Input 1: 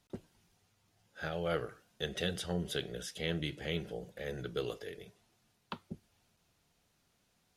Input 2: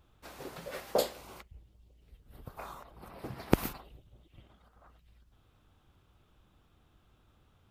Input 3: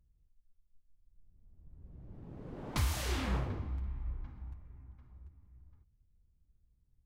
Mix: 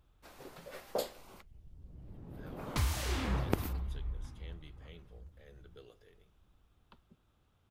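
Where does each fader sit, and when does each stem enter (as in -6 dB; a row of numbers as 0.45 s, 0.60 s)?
-19.0 dB, -6.5 dB, 0.0 dB; 1.20 s, 0.00 s, 0.00 s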